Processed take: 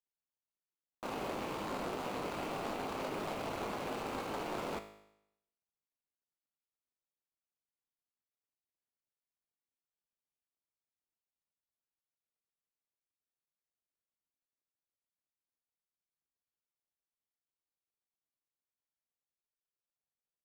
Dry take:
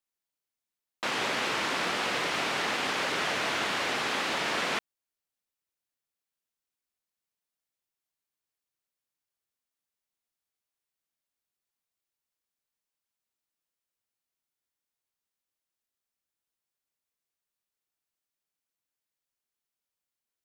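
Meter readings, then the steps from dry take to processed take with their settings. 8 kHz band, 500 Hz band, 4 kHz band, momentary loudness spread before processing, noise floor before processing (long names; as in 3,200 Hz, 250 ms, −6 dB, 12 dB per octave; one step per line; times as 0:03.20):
−14.5 dB, −4.5 dB, −17.5 dB, 2 LU, below −85 dBFS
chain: running median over 25 samples
tuned comb filter 52 Hz, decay 0.8 s, harmonics all, mix 70%
level +3.5 dB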